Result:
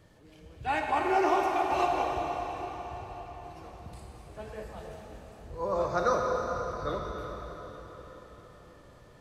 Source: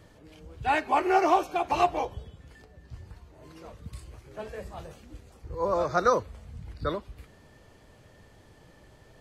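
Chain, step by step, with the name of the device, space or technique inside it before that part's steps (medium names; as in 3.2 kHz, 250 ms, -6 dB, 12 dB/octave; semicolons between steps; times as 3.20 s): cathedral (reverberation RT60 5.0 s, pre-delay 23 ms, DRR -0.5 dB); trim -5 dB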